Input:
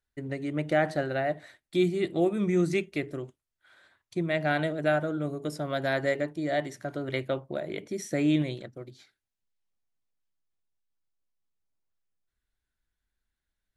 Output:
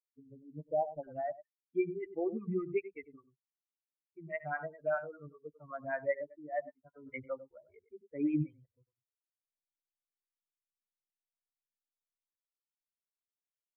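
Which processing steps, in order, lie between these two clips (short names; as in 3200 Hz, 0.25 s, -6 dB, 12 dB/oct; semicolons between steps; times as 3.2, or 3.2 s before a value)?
per-bin expansion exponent 3; steep low-pass 920 Hz 72 dB/oct, from 1.03 s 2400 Hz; echo 98 ms -14.5 dB; photocell phaser 5.1 Hz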